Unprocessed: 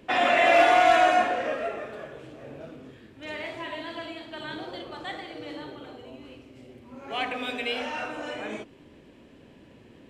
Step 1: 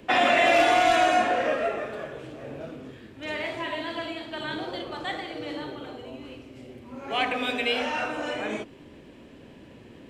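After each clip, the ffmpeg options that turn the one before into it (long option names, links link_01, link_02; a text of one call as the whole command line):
ffmpeg -i in.wav -filter_complex "[0:a]acrossover=split=380|3000[link_01][link_02][link_03];[link_02]acompressor=threshold=-23dB:ratio=6[link_04];[link_01][link_04][link_03]amix=inputs=3:normalize=0,volume=4dB" out.wav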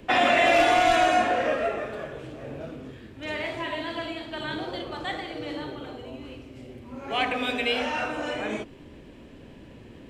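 ffmpeg -i in.wav -af "lowshelf=frequency=77:gain=11" out.wav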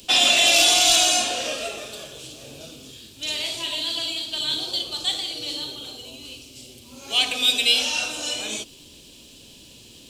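ffmpeg -i in.wav -af "aexciter=amount=14.5:drive=7.1:freq=3000,volume=-6dB" out.wav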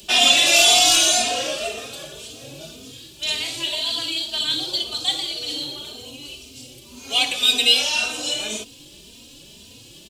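ffmpeg -i in.wav -filter_complex "[0:a]asplit=2[link_01][link_02];[link_02]adelay=3,afreqshift=1.9[link_03];[link_01][link_03]amix=inputs=2:normalize=1,volume=5dB" out.wav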